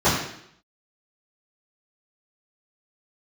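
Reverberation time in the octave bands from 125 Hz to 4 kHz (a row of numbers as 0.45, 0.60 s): 0.70, 0.75, 0.75, 0.70, 0.70, 0.70 s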